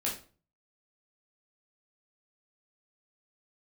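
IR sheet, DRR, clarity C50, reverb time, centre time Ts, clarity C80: -4.5 dB, 7.5 dB, 0.40 s, 26 ms, 12.5 dB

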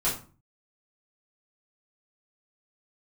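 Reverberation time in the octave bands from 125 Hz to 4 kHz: 0.65, 0.50, 0.40, 0.40, 0.30, 0.25 s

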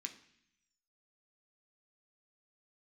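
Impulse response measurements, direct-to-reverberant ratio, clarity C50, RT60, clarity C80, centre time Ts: 3.5 dB, 12.5 dB, 0.65 s, 15.5 dB, 11 ms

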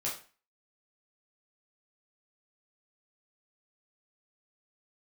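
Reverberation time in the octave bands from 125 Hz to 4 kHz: 0.40, 0.40, 0.35, 0.40, 0.40, 0.35 s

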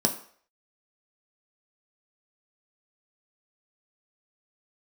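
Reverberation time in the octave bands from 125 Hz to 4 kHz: 0.35, 0.40, 0.55, 0.55, 0.55, 0.50 s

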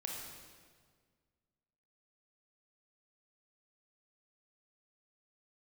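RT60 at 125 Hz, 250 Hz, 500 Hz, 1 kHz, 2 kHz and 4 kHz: 2.1, 2.0, 1.8, 1.6, 1.5, 1.4 s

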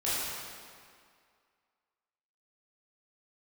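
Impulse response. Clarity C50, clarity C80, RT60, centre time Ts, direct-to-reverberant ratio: -4.0 dB, -1.5 dB, 2.1 s, 0.153 s, -11.0 dB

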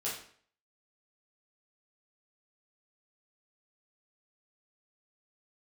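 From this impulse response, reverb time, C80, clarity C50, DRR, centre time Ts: 0.55 s, 8.5 dB, 4.0 dB, -8.0 dB, 40 ms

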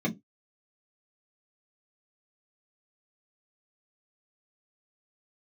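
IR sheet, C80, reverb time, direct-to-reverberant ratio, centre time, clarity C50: 29.5 dB, 0.20 s, -3.5 dB, 10 ms, 20.0 dB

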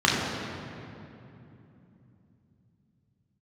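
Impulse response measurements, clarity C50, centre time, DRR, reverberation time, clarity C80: 0.0 dB, 0.128 s, -5.0 dB, 2.9 s, 1.0 dB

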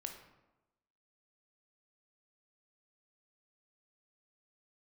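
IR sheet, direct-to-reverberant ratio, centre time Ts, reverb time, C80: 4.0 dB, 24 ms, 1.0 s, 9.5 dB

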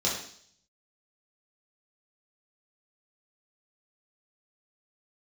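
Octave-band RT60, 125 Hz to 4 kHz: 0.75, 0.65, 0.60, 0.55, 0.60, 0.75 s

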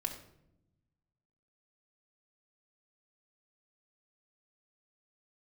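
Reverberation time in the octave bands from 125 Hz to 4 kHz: 1.8, 1.5, 0.95, 0.65, 0.60, 0.50 s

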